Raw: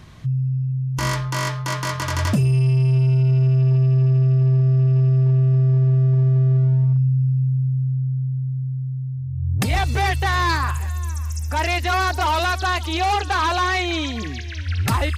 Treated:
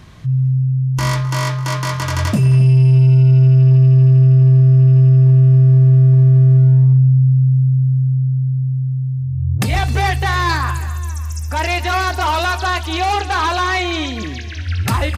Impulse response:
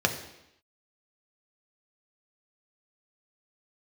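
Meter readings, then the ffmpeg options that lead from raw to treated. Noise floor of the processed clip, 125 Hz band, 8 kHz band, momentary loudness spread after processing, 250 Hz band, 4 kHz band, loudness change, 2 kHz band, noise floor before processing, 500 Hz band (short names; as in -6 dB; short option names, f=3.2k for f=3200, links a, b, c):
-24 dBFS, +6.5 dB, n/a, 11 LU, +6.0 dB, +2.5 dB, +6.0 dB, +3.0 dB, -28 dBFS, +3.0 dB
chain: -filter_complex "[0:a]asplit=2[a][b];[b]adelay=262.4,volume=-15dB,highshelf=f=4k:g=-5.9[c];[a][c]amix=inputs=2:normalize=0,asplit=2[d][e];[1:a]atrim=start_sample=2205,adelay=20[f];[e][f]afir=irnorm=-1:irlink=0,volume=-24dB[g];[d][g]amix=inputs=2:normalize=0,volume=2.5dB"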